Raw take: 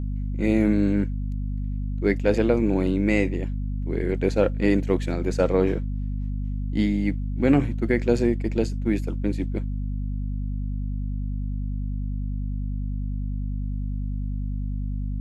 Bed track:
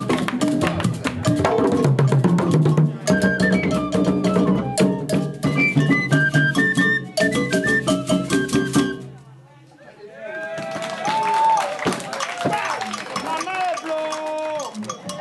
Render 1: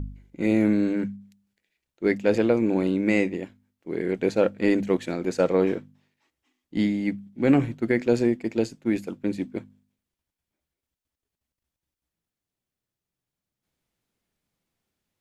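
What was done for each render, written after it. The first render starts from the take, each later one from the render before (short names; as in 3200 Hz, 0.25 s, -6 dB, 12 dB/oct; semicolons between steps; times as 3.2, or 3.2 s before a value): de-hum 50 Hz, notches 5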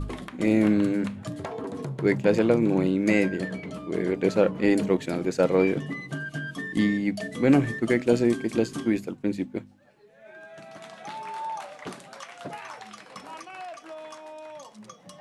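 add bed track -16.5 dB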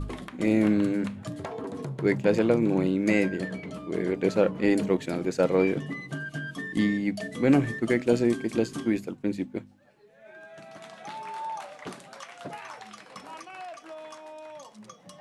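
gain -1.5 dB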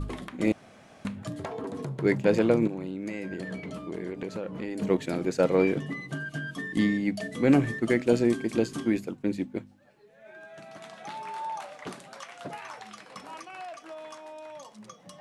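0.52–1.05 room tone; 2.67–4.82 compressor 8:1, threshold -30 dBFS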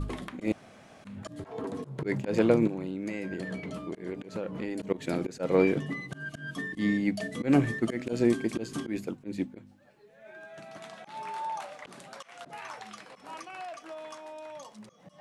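auto swell 0.139 s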